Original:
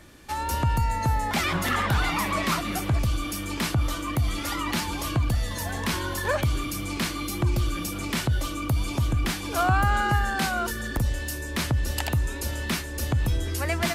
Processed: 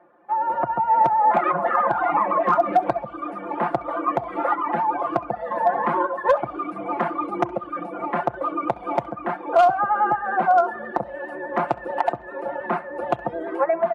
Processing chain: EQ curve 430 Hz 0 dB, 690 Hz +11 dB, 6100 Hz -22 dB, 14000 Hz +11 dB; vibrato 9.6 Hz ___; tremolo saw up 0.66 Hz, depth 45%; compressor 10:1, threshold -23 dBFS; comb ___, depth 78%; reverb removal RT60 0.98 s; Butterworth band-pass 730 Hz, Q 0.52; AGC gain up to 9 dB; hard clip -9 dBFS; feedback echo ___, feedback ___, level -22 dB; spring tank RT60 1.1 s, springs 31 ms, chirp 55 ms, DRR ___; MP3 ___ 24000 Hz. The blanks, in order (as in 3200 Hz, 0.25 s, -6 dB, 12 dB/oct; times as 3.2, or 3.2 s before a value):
54 cents, 5.7 ms, 67 ms, 38%, 20 dB, 56 kbps